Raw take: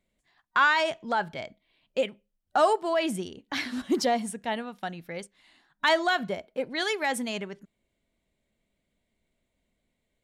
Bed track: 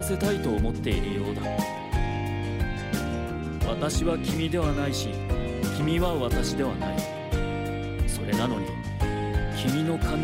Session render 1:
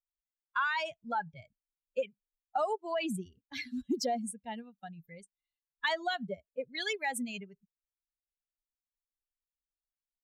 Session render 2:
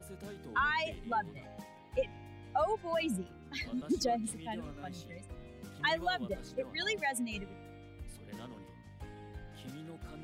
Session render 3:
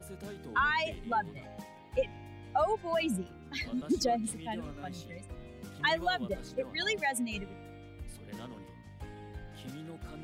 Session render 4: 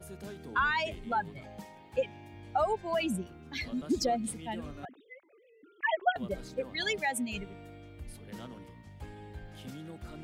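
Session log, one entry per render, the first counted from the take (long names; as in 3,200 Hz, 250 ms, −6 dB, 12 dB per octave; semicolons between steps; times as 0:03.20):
spectral dynamics exaggerated over time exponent 2; downward compressor 6 to 1, threshold −28 dBFS, peak gain reduction 9.5 dB
mix in bed track −21.5 dB
level +2.5 dB
0:01.88–0:02.34: high-pass filter 110 Hz; 0:04.85–0:06.16: three sine waves on the formant tracks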